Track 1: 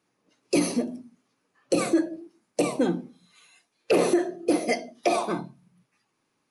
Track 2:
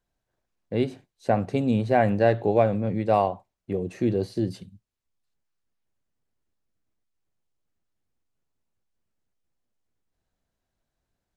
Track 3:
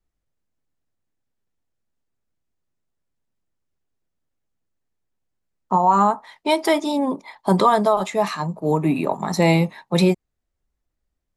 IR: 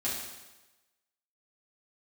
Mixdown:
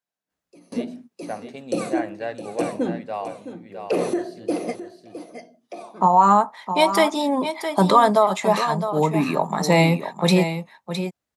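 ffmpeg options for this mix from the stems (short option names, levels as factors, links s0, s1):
-filter_complex "[0:a]tiltshelf=f=830:g=4.5,volume=0.891,asplit=2[s0][s1];[s1]volume=0.237[s2];[1:a]lowshelf=f=360:g=-12,volume=0.562,asplit=3[s3][s4][s5];[s4]volume=0.473[s6];[2:a]adelay=300,volume=1.26,asplit=2[s7][s8];[s8]volume=0.335[s9];[s5]apad=whole_len=286755[s10];[s0][s10]sidechaingate=range=0.0447:threshold=0.00112:ratio=16:detection=peak[s11];[s2][s6][s9]amix=inputs=3:normalize=0,aecho=0:1:662:1[s12];[s11][s3][s7][s12]amix=inputs=4:normalize=0,highpass=150,equalizer=f=340:t=o:w=0.83:g=-4.5"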